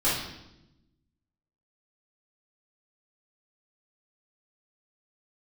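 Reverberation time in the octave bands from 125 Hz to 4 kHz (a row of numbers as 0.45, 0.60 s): 1.5, 1.4, 1.0, 0.80, 0.80, 0.80 s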